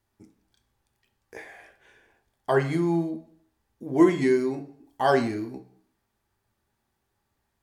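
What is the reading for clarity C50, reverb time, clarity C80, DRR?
13.0 dB, 0.55 s, 16.5 dB, 4.5 dB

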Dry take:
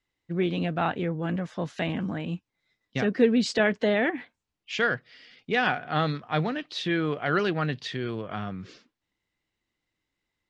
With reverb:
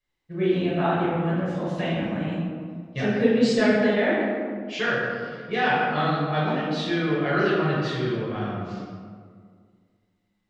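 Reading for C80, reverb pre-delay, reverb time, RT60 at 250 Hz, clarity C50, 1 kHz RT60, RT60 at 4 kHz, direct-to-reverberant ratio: 1.0 dB, 5 ms, 2.0 s, 2.2 s, -1.5 dB, 1.8 s, 0.95 s, -8.5 dB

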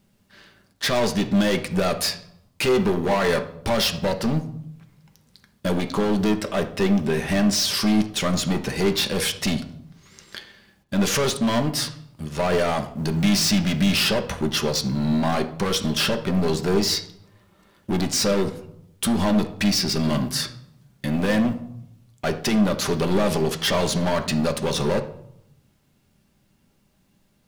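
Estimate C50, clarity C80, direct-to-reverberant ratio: 12.5 dB, 15.5 dB, 5.0 dB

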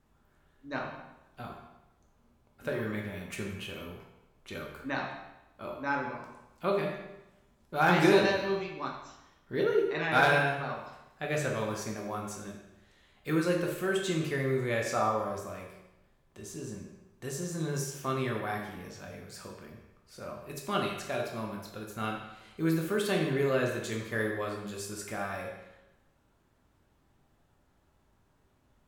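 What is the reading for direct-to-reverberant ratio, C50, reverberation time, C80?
0.0 dB, 3.5 dB, 0.95 s, 6.0 dB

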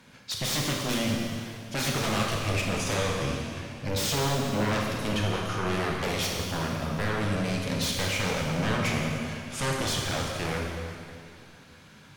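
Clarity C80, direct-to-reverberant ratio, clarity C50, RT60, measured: 2.0 dB, -1.0 dB, 1.0 dB, 2.4 s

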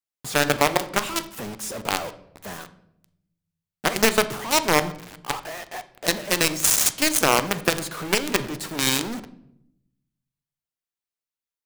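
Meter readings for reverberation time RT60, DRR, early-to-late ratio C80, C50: 0.75 s, 11.5 dB, 18.0 dB, 15.5 dB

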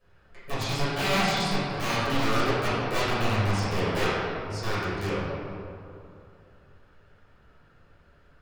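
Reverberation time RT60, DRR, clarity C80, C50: 2.7 s, -14.0 dB, -1.5 dB, -3.5 dB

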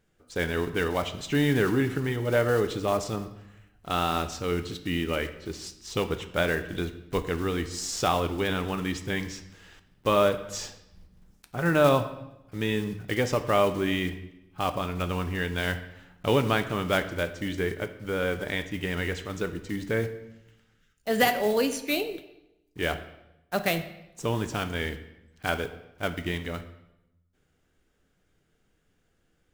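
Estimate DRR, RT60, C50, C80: 8.5 dB, 0.90 s, 12.5 dB, 15.0 dB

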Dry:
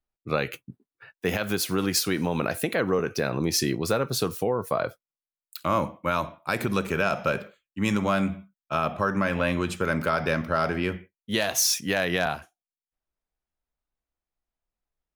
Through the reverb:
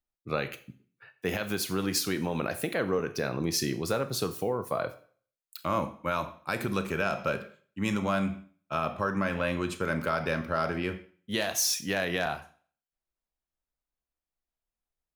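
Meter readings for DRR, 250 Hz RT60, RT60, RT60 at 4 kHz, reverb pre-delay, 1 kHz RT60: 11.5 dB, 0.45 s, 0.45 s, 0.45 s, 30 ms, 0.45 s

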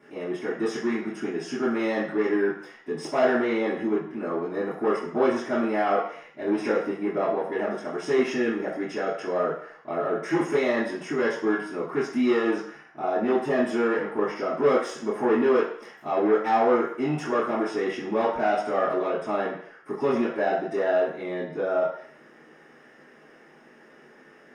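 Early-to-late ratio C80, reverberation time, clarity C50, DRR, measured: 7.5 dB, 0.60 s, 4.0 dB, -12.0 dB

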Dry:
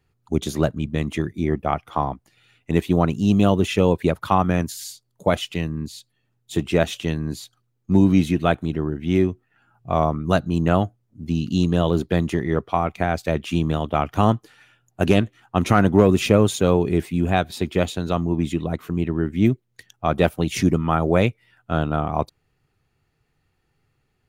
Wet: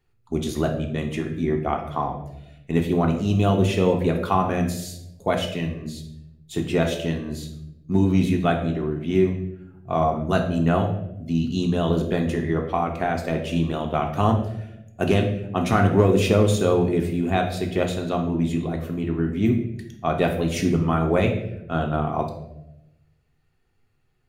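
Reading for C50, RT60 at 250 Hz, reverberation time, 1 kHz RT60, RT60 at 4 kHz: 7.5 dB, 1.2 s, 0.85 s, 0.70 s, 0.60 s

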